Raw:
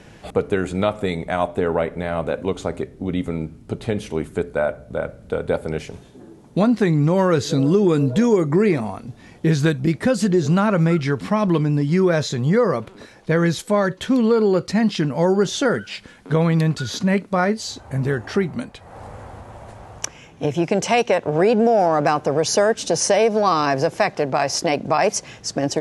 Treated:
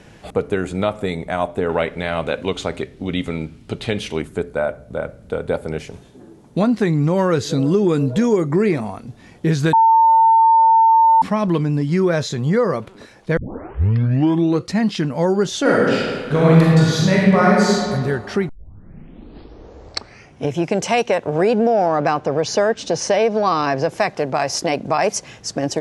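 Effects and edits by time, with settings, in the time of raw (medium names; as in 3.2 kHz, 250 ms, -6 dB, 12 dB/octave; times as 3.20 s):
1.69–4.22 s: peaking EQ 3.2 kHz +10.5 dB 1.9 oct
9.73–11.22 s: bleep 901 Hz -8.5 dBFS
13.37 s: tape start 1.32 s
15.61–17.80 s: reverb throw, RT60 1.8 s, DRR -5.5 dB
18.49 s: tape start 2.02 s
21.59–23.89 s: low-pass 5.3 kHz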